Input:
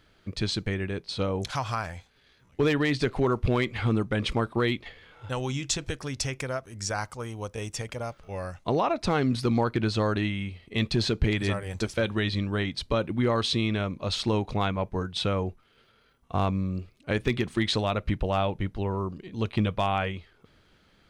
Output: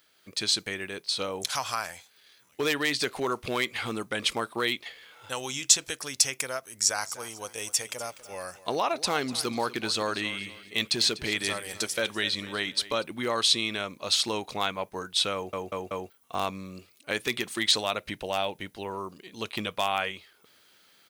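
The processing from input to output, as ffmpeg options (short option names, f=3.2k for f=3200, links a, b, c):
-filter_complex "[0:a]asplit=3[a][b][c];[a]afade=t=out:st=7.02:d=0.02[d];[b]aecho=1:1:246|492|738:0.15|0.0584|0.0228,afade=t=in:st=7.02:d=0.02,afade=t=out:st=13.02:d=0.02[e];[c]afade=t=in:st=13.02:d=0.02[f];[d][e][f]amix=inputs=3:normalize=0,asettb=1/sr,asplit=3[g][h][i];[g]atrim=end=17.974[j];[h]atrim=start=17.97:end=18.82,asetpts=PTS-STARTPTS,afade=t=in:d=0.004:c=qsin,afade=t=out:st=0.846:d=0.004:c=qsin,equalizer=f=1.2k:t=o:w=0.33:g=-6.5[k];[i]atrim=start=18.816[l];[j][k]acrossfade=d=0.004:c1=hsin:c2=qsin[m];[m][l]acrossfade=d=0.004:c1=qsin:c2=hsin,asplit=5[n][o][p][q][r];[n]atrim=end=15.532[s];[o]atrim=start=15.338:end=15.532[t];[p]atrim=start=15.338:end=15.532[u];[q]atrim=start=15.338:end=15.532[v];[r]atrim=start=16.098[w];[s][t]acrossfade=d=0.004:c1=hsin:c2=hsin[x];[x][u]acrossfade=d=0.004:c1=hsin:c2=hsin[y];[y][v]acrossfade=d=0.004:c1=hsin:c2=hsin[z];[z][w]acrossfade=d=0.004:c1=hsin:c2=hsin,lowshelf=f=110:g=-8,dynaudnorm=f=110:g=5:m=5dB,aemphasis=mode=production:type=riaa,volume=-5.5dB"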